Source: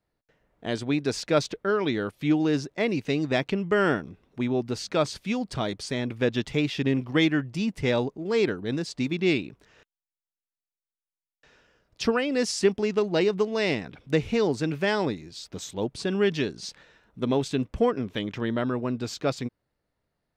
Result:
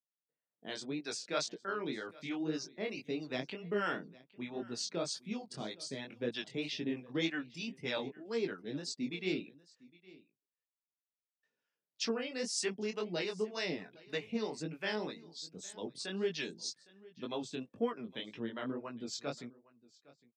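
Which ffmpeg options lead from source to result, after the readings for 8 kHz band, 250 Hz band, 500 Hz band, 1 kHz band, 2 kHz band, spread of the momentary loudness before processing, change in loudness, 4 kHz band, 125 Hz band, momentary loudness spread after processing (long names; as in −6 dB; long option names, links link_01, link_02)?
−4.5 dB, −13.5 dB, −13.0 dB, −12.0 dB, −10.5 dB, 8 LU, −12.0 dB, −7.0 dB, −17.0 dB, 8 LU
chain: -filter_complex "[0:a]highpass=frequency=150:width=0.5412,highpass=frequency=150:width=1.3066,afftdn=noise_reduction=17:noise_floor=-46,highshelf=frequency=2300:gain=7,acrossover=split=600[link_01][link_02];[link_01]aeval=exprs='val(0)*(1-0.7/2+0.7/2*cos(2*PI*3.2*n/s))':channel_layout=same[link_03];[link_02]aeval=exprs='val(0)*(1-0.7/2-0.7/2*cos(2*PI*3.2*n/s))':channel_layout=same[link_04];[link_03][link_04]amix=inputs=2:normalize=0,flanger=delay=17:depth=6.4:speed=1.9,asplit=2[link_05][link_06];[link_06]aecho=0:1:810:0.0794[link_07];[link_05][link_07]amix=inputs=2:normalize=0,aresample=32000,aresample=44100,adynamicequalizer=threshold=0.00501:dfrequency=4900:dqfactor=0.7:tfrequency=4900:tqfactor=0.7:attack=5:release=100:ratio=0.375:range=2.5:mode=boostabove:tftype=highshelf,volume=-7dB"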